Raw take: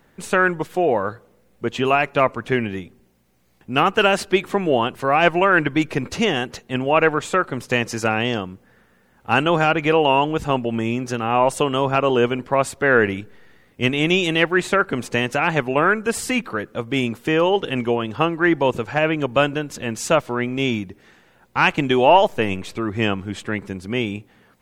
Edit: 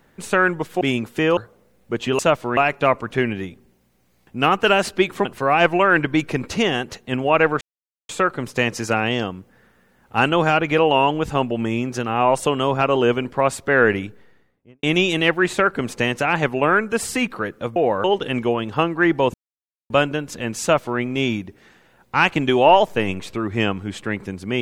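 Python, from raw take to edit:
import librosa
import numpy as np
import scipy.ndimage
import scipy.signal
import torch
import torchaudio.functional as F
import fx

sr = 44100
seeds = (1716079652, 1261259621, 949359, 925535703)

y = fx.studio_fade_out(x, sr, start_s=13.09, length_s=0.88)
y = fx.edit(y, sr, fx.swap(start_s=0.81, length_s=0.28, other_s=16.9, other_length_s=0.56),
    fx.cut(start_s=4.59, length_s=0.28),
    fx.insert_silence(at_s=7.23, length_s=0.48),
    fx.silence(start_s=18.76, length_s=0.56),
    fx.duplicate(start_s=20.04, length_s=0.38, to_s=1.91), tone=tone)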